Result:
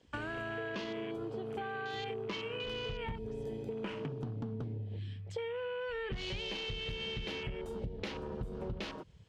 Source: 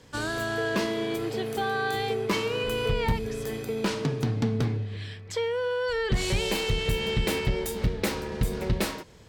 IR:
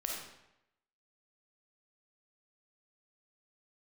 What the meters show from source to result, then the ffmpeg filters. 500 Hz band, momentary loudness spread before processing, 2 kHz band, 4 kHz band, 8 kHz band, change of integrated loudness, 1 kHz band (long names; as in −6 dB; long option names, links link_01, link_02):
−11.0 dB, 5 LU, −10.5 dB, −9.0 dB, −21.5 dB, −11.0 dB, −11.5 dB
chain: -filter_complex "[0:a]lowpass=9300,afwtdn=0.0141,equalizer=frequency=3000:width_type=o:width=0.52:gain=8,asplit=2[link_01][link_02];[link_02]alimiter=limit=-21.5dB:level=0:latency=1,volume=-1.5dB[link_03];[link_01][link_03]amix=inputs=2:normalize=0,acompressor=threshold=-31dB:ratio=6,volume=-6dB"